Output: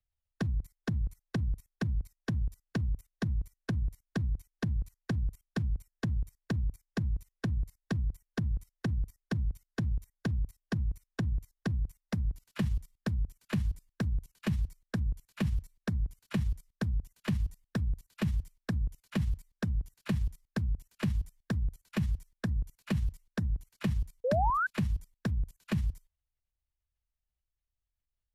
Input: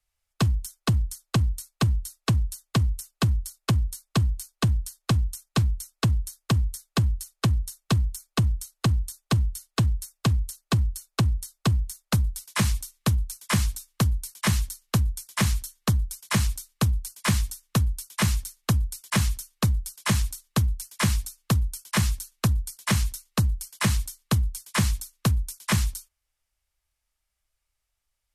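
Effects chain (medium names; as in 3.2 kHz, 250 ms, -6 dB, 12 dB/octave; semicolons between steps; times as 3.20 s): tone controls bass +11 dB, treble -13 dB; level held to a coarse grid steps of 20 dB; formant shift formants +5 st; painted sound rise, 24.24–24.67 s, 470–1600 Hz -22 dBFS; trim -6.5 dB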